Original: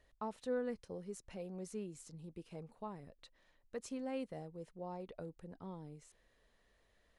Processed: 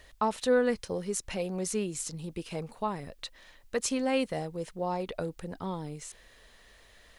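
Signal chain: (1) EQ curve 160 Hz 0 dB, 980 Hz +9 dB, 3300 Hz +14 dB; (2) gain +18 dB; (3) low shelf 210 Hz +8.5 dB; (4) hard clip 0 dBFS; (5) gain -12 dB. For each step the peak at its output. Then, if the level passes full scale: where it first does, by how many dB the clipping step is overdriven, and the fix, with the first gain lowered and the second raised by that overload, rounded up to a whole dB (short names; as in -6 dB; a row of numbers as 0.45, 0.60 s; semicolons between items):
-20.5, -2.5, -2.5, -2.5, -14.5 dBFS; no overload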